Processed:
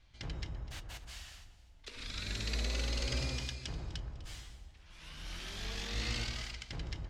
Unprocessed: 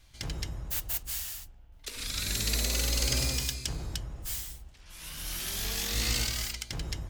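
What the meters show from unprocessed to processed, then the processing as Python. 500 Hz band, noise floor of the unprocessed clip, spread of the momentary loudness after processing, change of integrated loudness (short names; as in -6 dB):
-4.5 dB, -54 dBFS, 16 LU, -8.5 dB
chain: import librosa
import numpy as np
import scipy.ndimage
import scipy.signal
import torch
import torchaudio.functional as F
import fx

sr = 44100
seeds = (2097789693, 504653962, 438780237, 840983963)

y = scipy.signal.sosfilt(scipy.signal.butter(2, 4100.0, 'lowpass', fs=sr, output='sos'), x)
y = fx.echo_alternate(y, sr, ms=125, hz=1700.0, feedback_pct=60, wet_db=-12.0)
y = y * librosa.db_to_amplitude(-5.0)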